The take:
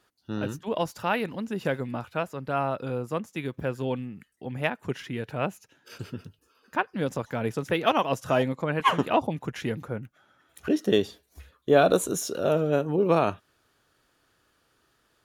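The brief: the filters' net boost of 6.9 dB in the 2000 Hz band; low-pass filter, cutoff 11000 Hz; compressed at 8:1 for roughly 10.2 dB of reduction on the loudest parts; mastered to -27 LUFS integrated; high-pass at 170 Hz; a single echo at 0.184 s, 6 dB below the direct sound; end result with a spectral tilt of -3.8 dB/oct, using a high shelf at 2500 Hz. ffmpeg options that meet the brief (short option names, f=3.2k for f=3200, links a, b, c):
-af "highpass=170,lowpass=11k,equalizer=f=2k:t=o:g=6.5,highshelf=f=2.5k:g=6,acompressor=threshold=-24dB:ratio=8,aecho=1:1:184:0.501,volume=3.5dB"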